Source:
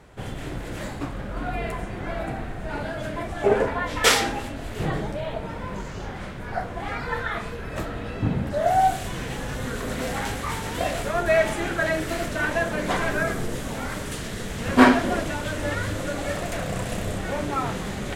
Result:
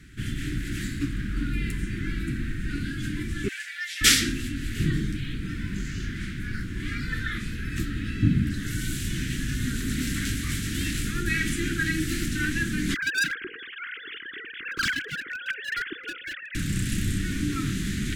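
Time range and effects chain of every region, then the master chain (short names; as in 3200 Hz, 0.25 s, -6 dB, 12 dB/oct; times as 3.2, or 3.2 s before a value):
3.48–4.01 steep high-pass 1700 Hz + comb 5.7 ms, depth 66% + core saturation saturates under 1400 Hz
12.94–16.55 sine-wave speech + feedback echo 0.119 s, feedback 44%, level -20.5 dB + hard clip -19.5 dBFS
whole clip: dynamic EQ 1800 Hz, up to -5 dB, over -39 dBFS, Q 1; elliptic band-stop 310–1600 Hz, stop band 80 dB; gain +4 dB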